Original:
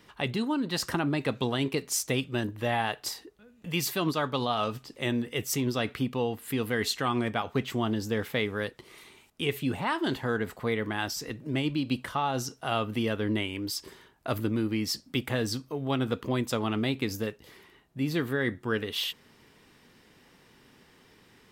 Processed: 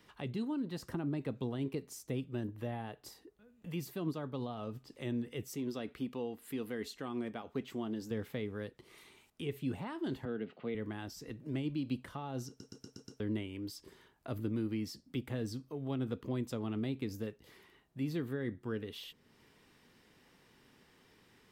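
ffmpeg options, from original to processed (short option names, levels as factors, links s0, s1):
-filter_complex "[0:a]asettb=1/sr,asplit=3[s0][s1][s2];[s0]atrim=end=0.624[s3];[s1]atrim=start=0.62:end=4.87,asetpts=PTS-STARTPTS,afade=t=in:d=0.004:c=qsin,afade=t=out:st=4.246:d=0.004:c=qsin,equalizer=f=4200:w=0.34:g=-5[s4];[s2]atrim=start=4.866[s5];[s3][s4]acrossfade=d=0.004:c1=hsin:c2=qsin[s6];[s6][s5]acrossfade=d=0.004:c1=qsin:c2=hsin,asettb=1/sr,asplit=3[s7][s8][s9];[s7]atrim=end=5.484[s10];[s8]atrim=start=5.48:end=8.11,asetpts=PTS-STARTPTS,afade=t=in:d=0.004:c=qsin,afade=t=out:st=2.626:d=0.004:c=qsin,equalizer=f=110:w=1.6:g=-11.5[s11];[s9]atrim=start=8.106[s12];[s10][s11]acrossfade=d=0.004:c1=hsin:c2=qsin[s13];[s13][s12]acrossfade=d=0.004:c1=qsin:c2=hsin,asettb=1/sr,asplit=3[s14][s15][s16];[s14]atrim=end=10.254[s17];[s15]atrim=start=10.25:end=10.75,asetpts=PTS-STARTPTS,afade=t=in:d=0.004:c=qsin,afade=t=out:st=0.496:d=0.004:c=qsin,highpass=f=150:w=0.5412,highpass=f=150:w=1.3066,equalizer=f=1000:t=q:w=4:g=-10,equalizer=f=1700:t=q:w=4:g=-5,equalizer=f=2800:t=q:w=4:g=7,lowpass=f=3800:w=0.5412,lowpass=f=3800:w=1.3066[s18];[s16]atrim=start=10.746[s19];[s17][s18]acrossfade=d=0.004:c1=hsin:c2=qsin[s20];[s20][s19]acrossfade=d=0.004:c1=qsin:c2=hsin,asplit=7[s21][s22][s23][s24][s25][s26][s27];[s21]atrim=end=12.602[s28];[s22]atrim=start=12.478:end=12.602[s29];[s23]atrim=start=12.478:end=12.602[s30];[s24]atrim=start=12.478:end=12.602[s31];[s25]atrim=start=12.478:end=12.602[s32];[s26]atrim=start=12.478:end=12.602[s33];[s27]atrim=start=13.198[s34];[s28][s29]acrossfade=d=0.004:c1=hsin:c2=hsin[s35];[s35][s30]acrossfade=d=0.004:c1=hsin:c2=hsin[s36];[s36][s31]acrossfade=d=0.004:c1=hsin:c2=hsin[s37];[s37][s32]acrossfade=d=0.004:c1=hsin:c2=hsin[s38];[s38][s33]acrossfade=d=0.004:c1=hsin:c2=hsin[s39];[s39][s34]acrossfade=d=0.004:c1=hsin:c2=hsin,acrossover=split=490[s40][s41];[s41]acompressor=threshold=0.00398:ratio=2[s42];[s40][s42]amix=inputs=2:normalize=0,volume=0.473"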